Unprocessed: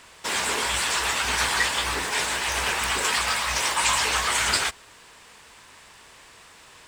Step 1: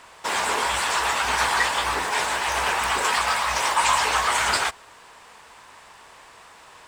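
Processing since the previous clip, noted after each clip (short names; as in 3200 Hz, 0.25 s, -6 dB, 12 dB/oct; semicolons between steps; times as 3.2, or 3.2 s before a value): bell 870 Hz +9 dB 1.8 oct; gain -2.5 dB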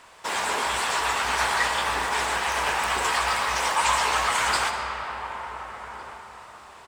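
outdoor echo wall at 250 m, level -12 dB; reverb RT60 5.3 s, pre-delay 30 ms, DRR 4 dB; gain -3 dB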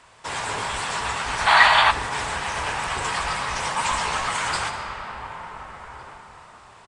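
octaver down 2 oct, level +3 dB; spectral gain 1.47–1.91, 600–4700 Hz +12 dB; downsampling 22050 Hz; gain -2 dB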